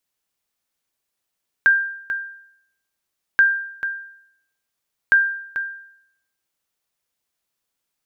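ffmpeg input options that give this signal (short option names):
-f lavfi -i "aevalsrc='0.422*(sin(2*PI*1590*mod(t,1.73))*exp(-6.91*mod(t,1.73)/0.71)+0.299*sin(2*PI*1590*max(mod(t,1.73)-0.44,0))*exp(-6.91*max(mod(t,1.73)-0.44,0)/0.71))':d=5.19:s=44100"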